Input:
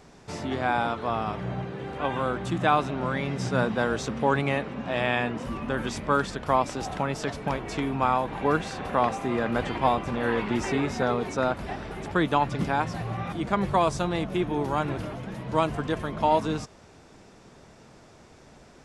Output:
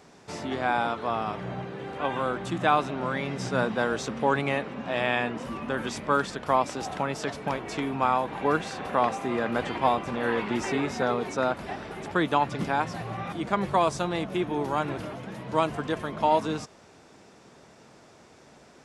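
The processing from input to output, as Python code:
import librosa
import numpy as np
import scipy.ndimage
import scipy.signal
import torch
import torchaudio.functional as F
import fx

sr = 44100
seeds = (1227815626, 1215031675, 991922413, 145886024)

y = fx.highpass(x, sr, hz=180.0, slope=6)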